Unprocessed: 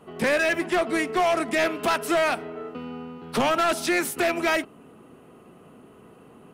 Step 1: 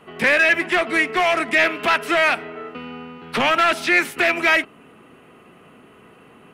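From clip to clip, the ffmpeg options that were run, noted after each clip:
-filter_complex "[0:a]equalizer=f=2200:w=0.83:g=11,acrossover=split=4800[s0][s1];[s1]alimiter=level_in=1.78:limit=0.0631:level=0:latency=1:release=196,volume=0.562[s2];[s0][s2]amix=inputs=2:normalize=0"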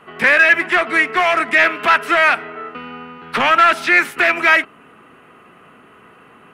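-af "equalizer=f=1400:w=0.96:g=8,volume=0.891"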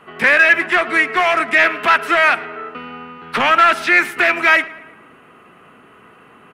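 -filter_complex "[0:a]asplit=2[s0][s1];[s1]adelay=111,lowpass=f=3400:p=1,volume=0.112,asplit=2[s2][s3];[s3]adelay=111,lowpass=f=3400:p=1,volume=0.55,asplit=2[s4][s5];[s5]adelay=111,lowpass=f=3400:p=1,volume=0.55,asplit=2[s6][s7];[s7]adelay=111,lowpass=f=3400:p=1,volume=0.55,asplit=2[s8][s9];[s9]adelay=111,lowpass=f=3400:p=1,volume=0.55[s10];[s0][s2][s4][s6][s8][s10]amix=inputs=6:normalize=0"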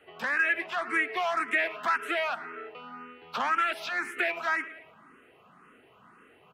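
-filter_complex "[0:a]acrossover=split=230|1800[s0][s1][s2];[s0]acompressor=threshold=0.00224:ratio=4[s3];[s1]acompressor=threshold=0.141:ratio=4[s4];[s2]acompressor=threshold=0.0891:ratio=4[s5];[s3][s4][s5]amix=inputs=3:normalize=0,asplit=2[s6][s7];[s7]afreqshift=1.9[s8];[s6][s8]amix=inputs=2:normalize=1,volume=0.376"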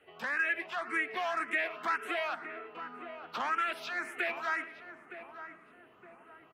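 -filter_complex "[0:a]asplit=2[s0][s1];[s1]adelay=915,lowpass=f=1100:p=1,volume=0.355,asplit=2[s2][s3];[s3]adelay=915,lowpass=f=1100:p=1,volume=0.5,asplit=2[s4][s5];[s5]adelay=915,lowpass=f=1100:p=1,volume=0.5,asplit=2[s6][s7];[s7]adelay=915,lowpass=f=1100:p=1,volume=0.5,asplit=2[s8][s9];[s9]adelay=915,lowpass=f=1100:p=1,volume=0.5,asplit=2[s10][s11];[s11]adelay=915,lowpass=f=1100:p=1,volume=0.5[s12];[s0][s2][s4][s6][s8][s10][s12]amix=inputs=7:normalize=0,volume=0.562"

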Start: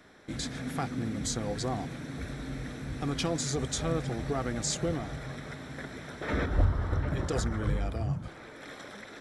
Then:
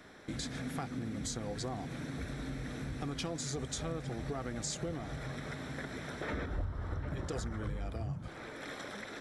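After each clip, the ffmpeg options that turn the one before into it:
-af "acompressor=threshold=0.0112:ratio=3,volume=1.19"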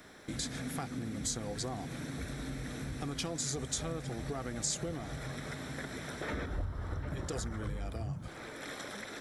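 -af "highshelf=f=6900:g=10.5"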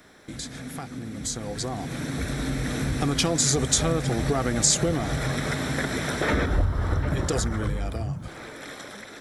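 -af "dynaudnorm=f=580:g=7:m=4.22,volume=1.19"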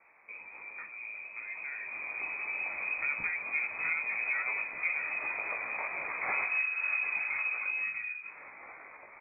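-filter_complex "[0:a]asplit=2[s0][s1];[s1]adelay=46,volume=0.251[s2];[s0][s2]amix=inputs=2:normalize=0,flanger=delay=16.5:depth=3.7:speed=2.1,lowpass=f=2200:t=q:w=0.5098,lowpass=f=2200:t=q:w=0.6013,lowpass=f=2200:t=q:w=0.9,lowpass=f=2200:t=q:w=2.563,afreqshift=-2600,volume=0.501"

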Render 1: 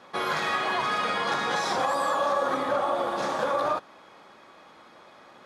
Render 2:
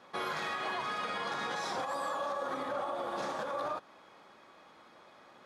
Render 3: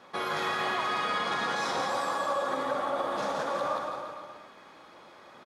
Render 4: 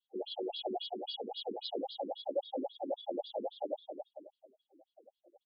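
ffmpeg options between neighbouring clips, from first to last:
-af "alimiter=limit=0.0944:level=0:latency=1:release=155,volume=0.501"
-af "aecho=1:1:170|323|460.7|584.6|696.2:0.631|0.398|0.251|0.158|0.1,volume=1.5"
-af "asuperstop=centerf=1500:order=20:qfactor=0.75,afftdn=nr=27:nf=-46,afftfilt=real='re*between(b*sr/1024,290*pow(3700/290,0.5+0.5*sin(2*PI*3.7*pts/sr))/1.41,290*pow(3700/290,0.5+0.5*sin(2*PI*3.7*pts/sr))*1.41)':imag='im*between(b*sr/1024,290*pow(3700/290,0.5+0.5*sin(2*PI*3.7*pts/sr))/1.41,290*pow(3700/290,0.5+0.5*sin(2*PI*3.7*pts/sr))*1.41)':win_size=1024:overlap=0.75,volume=1.33"

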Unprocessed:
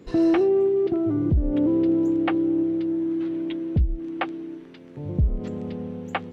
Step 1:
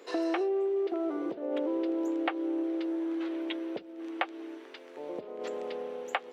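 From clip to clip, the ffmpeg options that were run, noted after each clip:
-af "highpass=f=440:w=0.5412,highpass=f=440:w=1.3066,acompressor=threshold=0.0282:ratio=6,volume=1.5"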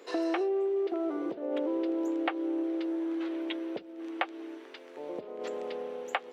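-af anull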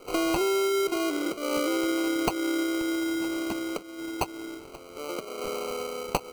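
-af "acrusher=samples=25:mix=1:aa=0.000001,volume=1.58"

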